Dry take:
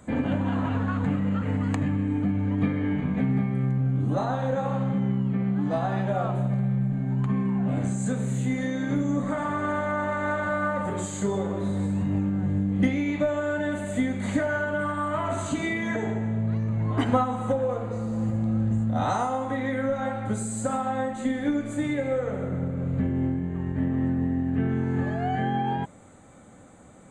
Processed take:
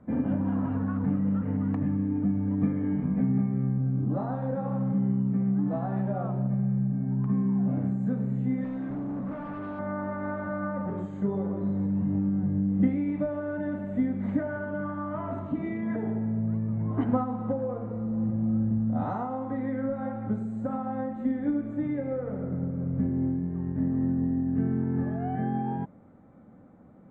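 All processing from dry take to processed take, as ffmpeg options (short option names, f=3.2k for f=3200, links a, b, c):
-filter_complex "[0:a]asettb=1/sr,asplit=3[a][b][c];[a]atrim=end=8.644[d];[b]atrim=start=8.64:end=9.79,asetpts=PTS-STARTPTS,afade=t=in:d=0.004:c=qsin,afade=t=out:st=1.146:d=0.004:c=qsin,highshelf=f=4k:g=4.5,volume=29dB,asoftclip=hard,volume=-29dB[e];[c]atrim=start=9.786[f];[d][e]acrossfade=d=0.004:c1=hsin:c2=qsin[g];[g][f]acrossfade=d=0.004:c1=qsin:c2=hsin,asettb=1/sr,asplit=3[h][i][j];[h]atrim=end=15.394[k];[i]atrim=start=15.39:end=15.91,asetpts=PTS-STARTPTS,afade=t=in:d=0.004:c=qsin,afade=t=out:st=0.516:d=0.004:c=qsin,bandreject=f=1.5k:w=8.5,adynamicsmooth=sensitivity=3.5:basefreq=3.1k[l];[j]atrim=start=15.906[m];[k][l]acrossfade=d=0.004:c1=hsin:c2=qsin[n];[n][m]acrossfade=d=0.004:c1=qsin:c2=hsin,lowpass=1.4k,equalizer=f=210:w=0.96:g=7.5,volume=-7dB"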